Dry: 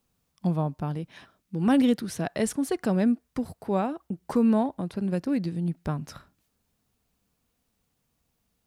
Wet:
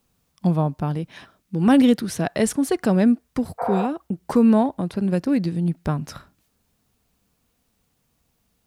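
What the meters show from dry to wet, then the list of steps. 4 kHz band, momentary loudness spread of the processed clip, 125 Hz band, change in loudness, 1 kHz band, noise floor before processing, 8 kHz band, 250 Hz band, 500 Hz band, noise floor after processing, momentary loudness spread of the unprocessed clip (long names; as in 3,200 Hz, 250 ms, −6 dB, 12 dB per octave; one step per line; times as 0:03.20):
+6.0 dB, 12 LU, +6.0 dB, +6.0 dB, +6.0 dB, −76 dBFS, +6.0 dB, +6.0 dB, +6.0 dB, −70 dBFS, 12 LU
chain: healed spectral selection 0:03.62–0:03.83, 470–2,400 Hz after
level +6 dB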